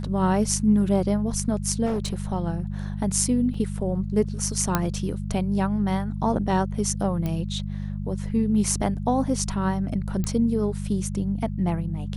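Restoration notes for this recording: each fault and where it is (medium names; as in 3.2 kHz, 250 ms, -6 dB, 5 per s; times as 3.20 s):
hum 50 Hz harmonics 4 -30 dBFS
1.85–2.24 s: clipped -21.5 dBFS
3.54 s: dropout 3.4 ms
4.75 s: pop -6 dBFS
7.26 s: pop -16 dBFS
10.24 s: pop -15 dBFS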